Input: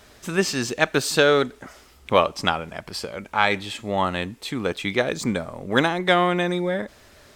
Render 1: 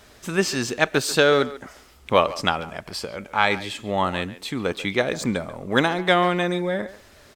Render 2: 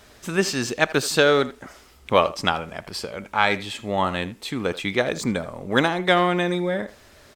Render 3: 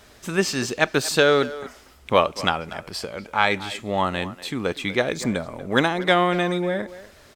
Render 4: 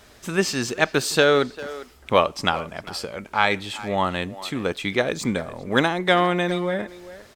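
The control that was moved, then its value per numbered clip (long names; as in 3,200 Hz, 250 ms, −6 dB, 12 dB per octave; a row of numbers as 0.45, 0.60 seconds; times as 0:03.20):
far-end echo of a speakerphone, delay time: 140, 80, 240, 400 milliseconds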